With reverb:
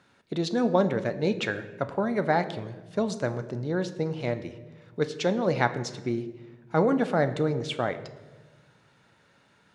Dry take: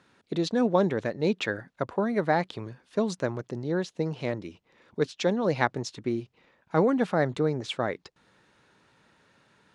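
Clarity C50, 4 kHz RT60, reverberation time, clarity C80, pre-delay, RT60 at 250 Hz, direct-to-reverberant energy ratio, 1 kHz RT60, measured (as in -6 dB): 13.0 dB, 0.80 s, 1.2 s, 15.0 dB, 5 ms, 1.8 s, 9.5 dB, 1.0 s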